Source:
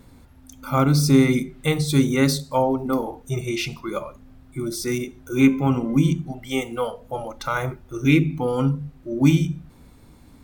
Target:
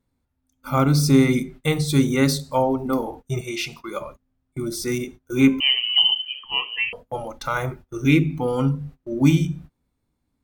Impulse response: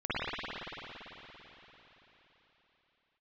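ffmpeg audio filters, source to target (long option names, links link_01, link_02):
-filter_complex "[0:a]asettb=1/sr,asplit=3[link_01][link_02][link_03];[link_01]atrim=end=5.604[link_04];[link_02]atrim=start=5.6:end=6.93,asetpts=PTS-STARTPTS,afade=type=in:duration=0.004:curve=qsin,afade=type=out:start_time=1.326:duration=0.004:curve=qsin,lowpass=frequency=2700:width_type=q:width=0.5098,lowpass=frequency=2700:width_type=q:width=0.6013,lowpass=frequency=2700:width_type=q:width=0.9,lowpass=frequency=2700:width_type=q:width=2.563,afreqshift=-3200[link_05];[link_03]atrim=start=6.926[link_06];[link_04][link_05]acrossfade=duration=0.004:curve1=hsin:curve2=qsin[link_07];[link_07][link_06]acrossfade=duration=0.004:curve1=qsin:curve2=hsin,agate=range=-25dB:threshold=-38dB:ratio=16:detection=peak,asettb=1/sr,asplit=3[link_08][link_09][link_10];[link_08]atrim=end=3.414[link_11];[link_09]atrim=start=3.41:end=4.01,asetpts=PTS-STARTPTS,afade=type=in:duration=0.004:curve=qsin,afade=type=out:start_time=0.596:duration=0.004:curve=qsin,lowshelf=frequency=280:gain=-10.5[link_12];[link_10]atrim=start=4.006[link_13];[link_11][link_12]acrossfade=duration=0.004:curve1=hsin:curve2=qsin[link_14];[link_14][link_13]acrossfade=duration=0.004:curve1=qsin:curve2=hsin"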